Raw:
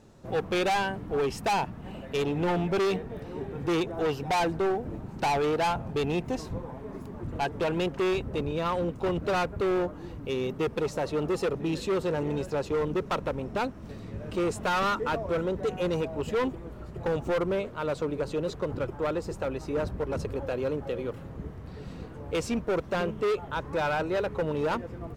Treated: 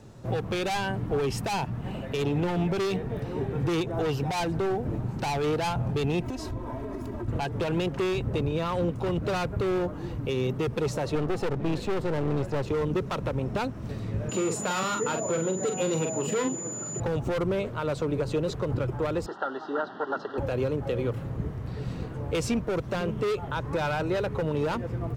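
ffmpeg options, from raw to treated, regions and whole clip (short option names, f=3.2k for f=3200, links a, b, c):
-filter_complex "[0:a]asettb=1/sr,asplit=3[a][b][c];[a]atrim=end=6.224[d];[b]atrim=start=6.22:end=7.28,asetpts=PTS-STARTPTS,afade=t=in:d=0.004:c=qsin,afade=t=out:st=1.056:d=0.004:c=qsin,aecho=1:1:3.1:0.91,atrim=end_sample=46746,acompressor=threshold=-35dB:ratio=6:attack=3.2:release=140:knee=1:detection=peak[e];[c]atrim=start=7.276[f];[d][e]acrossfade=d=0.004:c1=hsin:c2=qsin[g];[g][f]acrossfade=d=0.004:c1=qsin:c2=hsin,asettb=1/sr,asplit=3[h][i][j];[h]atrim=end=11.154[k];[i]atrim=start=11.15:end=12.68,asetpts=PTS-STARTPTS,afade=t=in:d=0.004:c=qsin,afade=t=out:st=1.526:d=0.004:c=qsin,highshelf=f=3.3k:g=-9.5,aeval=exprs='clip(val(0),-1,0.00841)':c=same[l];[j]atrim=start=12.676[m];[k][l]acrossfade=d=0.004:c1=hsin:c2=qsin[n];[n][m]acrossfade=d=0.004:c1=qsin:c2=hsin,asettb=1/sr,asplit=3[o][p][q];[o]atrim=end=14.294[r];[p]atrim=start=14.29:end=17,asetpts=PTS-STARTPTS,afade=t=in:d=0.004:c=qsin,afade=t=out:st=2.706:d=0.004:c=qsin,highpass=f=150:w=0.5412,highpass=f=150:w=1.3066,aeval=exprs='val(0)+0.00794*sin(2*PI*7000*n/s)':c=same,asplit=2[s][t];[t]adelay=43,volume=-6.5dB[u];[s][u]amix=inputs=2:normalize=0,atrim=end_sample=119511[v];[q]atrim=start=16.996[w];[r][v]acrossfade=d=0.004:c1=hsin:c2=qsin[x];[x][w]acrossfade=d=0.004:c1=qsin:c2=hsin,asettb=1/sr,asplit=3[y][z][aa];[y]atrim=end=19.264[ab];[z]atrim=start=19.26:end=20.38,asetpts=PTS-STARTPTS,afade=t=in:d=0.004:c=qsin,afade=t=out:st=1.116:d=0.004:c=qsin,acrusher=bits=7:mix=0:aa=0.5,asuperstop=centerf=2300:order=20:qfactor=3,highpass=f=290:w=0.5412,highpass=f=290:w=1.3066,equalizer=f=350:t=q:w=4:g=-4,equalizer=f=510:t=q:w=4:g=-10,equalizer=f=790:t=q:w=4:g=6,equalizer=f=1.4k:t=q:w=4:g=10,equalizer=f=2.6k:t=q:w=4:g=-5,lowpass=f=3.8k:w=0.5412,lowpass=f=3.8k:w=1.3066[ac];[aa]atrim=start=20.376[ad];[ab][ac]acrossfade=d=0.004:c1=hsin:c2=qsin[ae];[ae][ad]acrossfade=d=0.004:c1=qsin:c2=hsin,equalizer=f=120:w=3.9:g=9.5,acrossover=split=260|3000[af][ag][ah];[ag]acompressor=threshold=-28dB:ratio=6[ai];[af][ai][ah]amix=inputs=3:normalize=0,alimiter=limit=-23dB:level=0:latency=1:release=137,volume=4.5dB"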